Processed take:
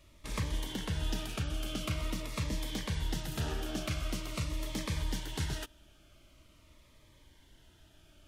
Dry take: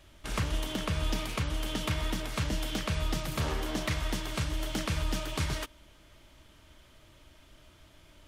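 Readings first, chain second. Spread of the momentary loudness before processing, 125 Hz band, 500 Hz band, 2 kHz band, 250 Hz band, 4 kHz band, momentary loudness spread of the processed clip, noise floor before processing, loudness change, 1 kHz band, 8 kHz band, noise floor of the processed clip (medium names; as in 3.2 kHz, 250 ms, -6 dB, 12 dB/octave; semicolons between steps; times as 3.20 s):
2 LU, -3.0 dB, -5.5 dB, -5.5 dB, -3.5 dB, -4.0 dB, 2 LU, -58 dBFS, -4.0 dB, -6.5 dB, -3.0 dB, -62 dBFS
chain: Shepard-style phaser falling 0.45 Hz; trim -3 dB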